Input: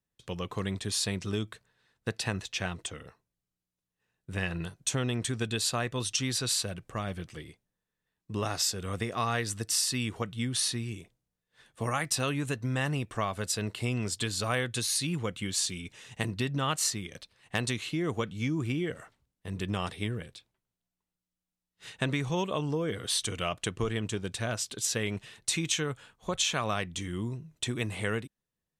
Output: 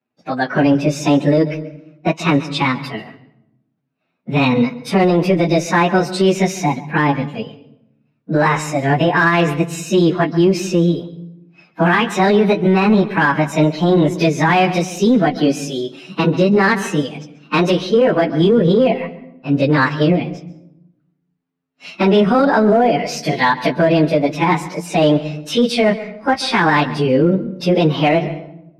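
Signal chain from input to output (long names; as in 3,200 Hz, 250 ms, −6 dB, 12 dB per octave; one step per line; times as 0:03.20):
phase-vocoder pitch shift without resampling +6.5 semitones
low-pass filter 2,100 Hz 12 dB per octave
noise reduction from a noise print of the clip's start 9 dB
high-pass filter 200 Hz 12 dB per octave
in parallel at −9 dB: gain into a clipping stage and back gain 33.5 dB
on the sum: convolution reverb RT60 0.80 s, pre-delay 135 ms, DRR 17 dB
boost into a limiter +28 dB
level −4.5 dB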